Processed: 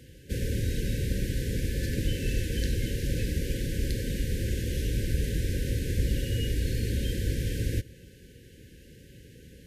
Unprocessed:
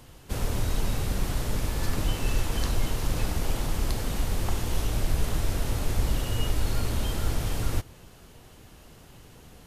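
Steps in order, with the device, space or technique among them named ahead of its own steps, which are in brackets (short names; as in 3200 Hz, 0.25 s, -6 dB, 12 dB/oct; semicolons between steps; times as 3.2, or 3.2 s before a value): HPF 42 Hz; behind a face mask (high shelf 2400 Hz -6 dB); FFT band-reject 560–1500 Hz; gain +1.5 dB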